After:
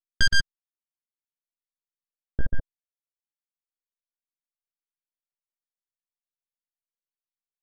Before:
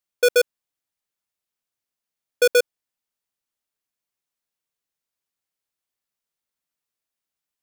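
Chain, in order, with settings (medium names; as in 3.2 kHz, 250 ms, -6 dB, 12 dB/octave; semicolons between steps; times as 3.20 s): high-pass 110 Hz 24 dB/octave; gate with hold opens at -18 dBFS; reverb removal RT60 0.86 s; dynamic bell 1.6 kHz, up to -7 dB, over -37 dBFS, Q 1.7; full-wave rectifier; LFO low-pass square 0.71 Hz 330–2800 Hz; pitch shift +8.5 st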